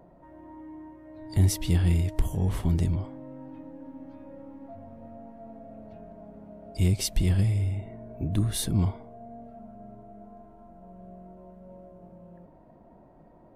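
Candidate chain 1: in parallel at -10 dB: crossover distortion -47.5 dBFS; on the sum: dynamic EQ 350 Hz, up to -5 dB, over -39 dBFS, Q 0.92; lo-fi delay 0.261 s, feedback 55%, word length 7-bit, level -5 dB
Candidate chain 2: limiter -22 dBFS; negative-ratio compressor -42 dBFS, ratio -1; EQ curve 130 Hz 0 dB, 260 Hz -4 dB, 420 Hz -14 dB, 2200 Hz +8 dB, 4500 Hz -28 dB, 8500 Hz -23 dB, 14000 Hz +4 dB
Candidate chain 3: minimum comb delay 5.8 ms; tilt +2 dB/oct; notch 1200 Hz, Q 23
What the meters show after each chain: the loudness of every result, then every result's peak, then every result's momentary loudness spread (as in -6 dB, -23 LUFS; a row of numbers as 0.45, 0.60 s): -24.5, -46.0, -31.0 LUFS; -8.5, -29.0, -12.0 dBFS; 22, 8, 23 LU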